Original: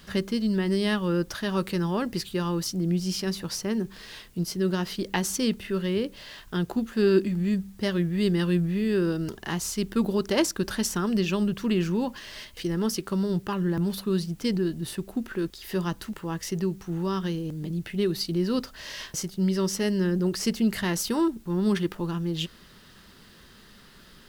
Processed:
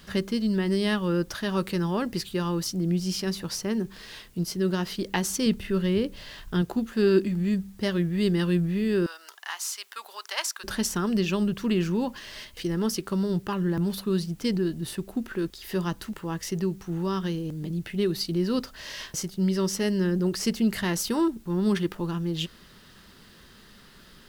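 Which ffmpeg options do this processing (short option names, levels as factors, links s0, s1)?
-filter_complex "[0:a]asettb=1/sr,asplit=3[s0][s1][s2];[s0]atrim=end=5.464[s3];[s1]atrim=start=5.46:end=6.62,asetpts=PTS-STARTPTS,afade=t=in:d=0.004:c=qsin,afade=t=out:st=1.156:d=0.004:c=qsin,lowshelf=f=140:g=9.5[s4];[s2]atrim=start=6.616[s5];[s3][s4]acrossfade=d=0.004:c1=hsin:c2=qsin[s6];[s6][s5]acrossfade=d=0.004:c1=qsin:c2=hsin,asettb=1/sr,asplit=3[s7][s8][s9];[s7]atrim=end=9.064[s10];[s8]atrim=start=9.06:end=10.64,asetpts=PTS-STARTPTS,afade=t=in:d=0.004:c=qsin,afade=t=out:st=1.576:d=0.004:c=qsin,highpass=f=870:w=0.5412,highpass=f=870:w=1.3066[s11];[s9]atrim=start=10.636[s12];[s10][s11]acrossfade=d=0.004:c1=hsin:c2=qsin[s13];[s13][s12]acrossfade=d=0.004:c1=qsin:c2=hsin"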